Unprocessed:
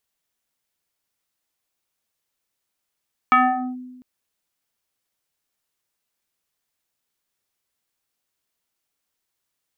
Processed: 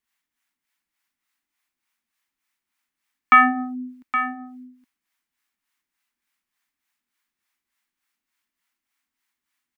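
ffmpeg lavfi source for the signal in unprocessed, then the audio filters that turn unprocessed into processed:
-f lavfi -i "aevalsrc='0.355*pow(10,-3*t/1.22)*sin(2*PI*252*t+3.5*clip(1-t/0.44,0,1)*sin(2*PI*2.01*252*t))':duration=0.7:sample_rate=44100"
-filter_complex "[0:a]equalizer=frequency=125:width_type=o:width=1:gain=-10,equalizer=frequency=250:width_type=o:width=1:gain=10,equalizer=frequency=500:width_type=o:width=1:gain=-11,equalizer=frequency=1000:width_type=o:width=1:gain=5,equalizer=frequency=2000:width_type=o:width=1:gain=9,acrossover=split=520[link_01][link_02];[link_01]aeval=exprs='val(0)*(1-0.7/2+0.7/2*cos(2*PI*3.4*n/s))':channel_layout=same[link_03];[link_02]aeval=exprs='val(0)*(1-0.7/2-0.7/2*cos(2*PI*3.4*n/s))':channel_layout=same[link_04];[link_03][link_04]amix=inputs=2:normalize=0,aecho=1:1:818:0.299"

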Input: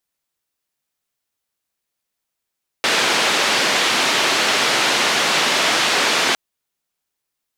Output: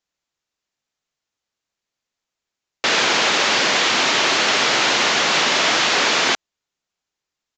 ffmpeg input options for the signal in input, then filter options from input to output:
-f lavfi -i "anoisesrc=color=white:duration=3.51:sample_rate=44100:seed=1,highpass=frequency=250,lowpass=frequency=3900,volume=-5.2dB"
-af "aresample=16000,aresample=44100"

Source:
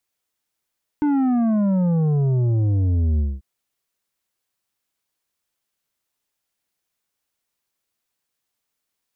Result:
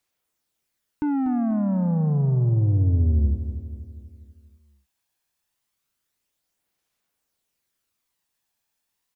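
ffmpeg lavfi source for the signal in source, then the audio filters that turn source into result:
-f lavfi -i "aevalsrc='0.141*clip((2.39-t)/0.22,0,1)*tanh(2.51*sin(2*PI*300*2.39/log(65/300)*(exp(log(65/300)*t/2.39)-1)))/tanh(2.51)':duration=2.39:sample_rate=44100"
-filter_complex "[0:a]alimiter=limit=-21dB:level=0:latency=1,aphaser=in_gain=1:out_gain=1:delay=1.2:decay=0.33:speed=0.29:type=sinusoidal,asplit=2[link_01][link_02];[link_02]aecho=0:1:243|486|729|972|1215|1458:0.299|0.155|0.0807|0.042|0.0218|0.0114[link_03];[link_01][link_03]amix=inputs=2:normalize=0"

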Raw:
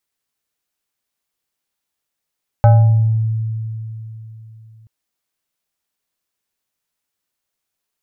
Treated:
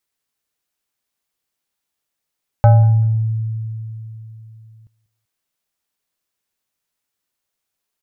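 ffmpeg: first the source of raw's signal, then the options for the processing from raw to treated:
-f lavfi -i "aevalsrc='0.596*pow(10,-3*t/3.52)*sin(2*PI*111*t+0.69*pow(10,-3*t/0.84)*sin(2*PI*6.33*111*t))':duration=2.23:sample_rate=44100"
-af "aecho=1:1:192|384:0.0891|0.0232"

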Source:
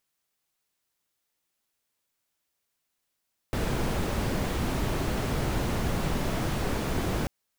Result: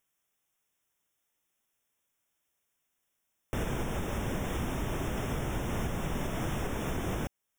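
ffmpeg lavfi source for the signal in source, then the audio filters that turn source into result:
-f lavfi -i "anoisesrc=color=brown:amplitude=0.197:duration=3.74:sample_rate=44100:seed=1"
-af "alimiter=limit=-23dB:level=0:latency=1:release=438,asuperstop=centerf=4400:order=20:qfactor=2.9"

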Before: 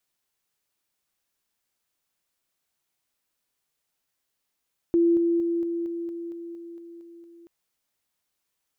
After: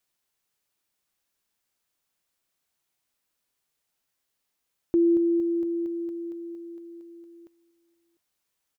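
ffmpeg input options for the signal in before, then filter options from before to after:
-f lavfi -i "aevalsrc='pow(10,(-16.5-3*floor(t/0.23))/20)*sin(2*PI*339*t)':duration=2.53:sample_rate=44100"
-filter_complex "[0:a]asplit=2[link_01][link_02];[link_02]adelay=699.7,volume=-22dB,highshelf=frequency=4000:gain=-15.7[link_03];[link_01][link_03]amix=inputs=2:normalize=0"

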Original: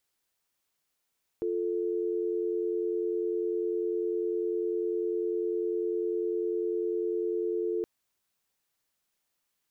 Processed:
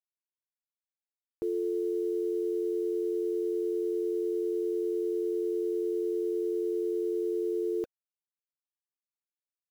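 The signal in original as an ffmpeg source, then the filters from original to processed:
-f lavfi -i "aevalsrc='0.0316*(sin(2*PI*350*t)+sin(2*PI*440*t))':duration=6.42:sample_rate=44100"
-af "bandreject=frequency=510:width=12,acrusher=bits=8:mix=0:aa=0.5"

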